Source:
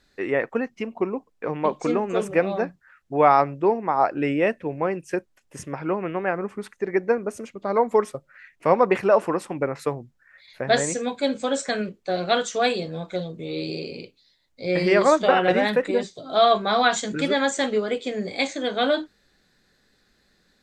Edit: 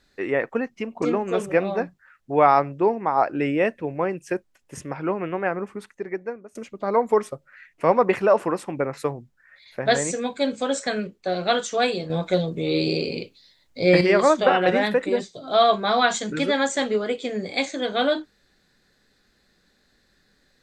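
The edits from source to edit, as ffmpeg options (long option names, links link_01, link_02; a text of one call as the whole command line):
ffmpeg -i in.wav -filter_complex "[0:a]asplit=5[link_01][link_02][link_03][link_04][link_05];[link_01]atrim=end=1.022[link_06];[link_02]atrim=start=1.838:end=7.37,asetpts=PTS-STARTPTS,afade=type=out:start_time=4.512:duration=1.02:silence=0.0891251[link_07];[link_03]atrim=start=7.37:end=12.922,asetpts=PTS-STARTPTS,afade=type=in:duration=0.004:curve=hsin:silence=0.0891251[link_08];[link_04]atrim=start=12.918:end=14.832,asetpts=PTS-STARTPTS,volume=7dB[link_09];[link_05]atrim=start=14.828[link_10];[link_07][link_08]concat=n=2:v=0:a=1[link_11];[link_06][link_11]acrossfade=duration=0.004:curve1=hsin:curve2=hsin[link_12];[link_12][link_09]acrossfade=duration=0.004:curve1=hsin:curve2=hsin[link_13];[link_13][link_10]acrossfade=duration=0.004:curve1=hsin:curve2=hsin" out.wav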